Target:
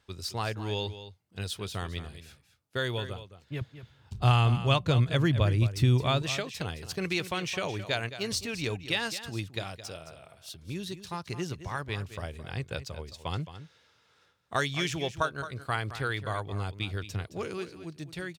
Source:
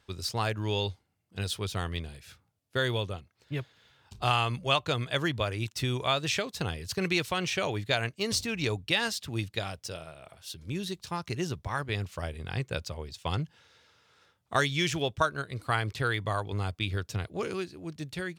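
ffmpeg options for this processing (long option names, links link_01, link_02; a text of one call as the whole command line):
ffmpeg -i in.wav -filter_complex "[0:a]asettb=1/sr,asplit=3[link_01][link_02][link_03];[link_01]atrim=end=3.614[link_04];[link_02]atrim=start=3.61:end=6.22,asetpts=PTS-STARTPTS,afade=type=in:duration=0.004:curve=qsin,afade=type=out:start_time=2.606:duration=0.004:curve=qsin,equalizer=frequency=98:width=0.38:gain=13[link_05];[link_03]atrim=start=6.216[link_06];[link_04][link_05]acrossfade=duration=0.004:curve1=hsin:curve2=qsin[link_07];[link_07][link_06]acrossfade=duration=0.004:curve1=qsin:curve2=hsin,aecho=1:1:217:0.237,volume=-2.5dB" out.wav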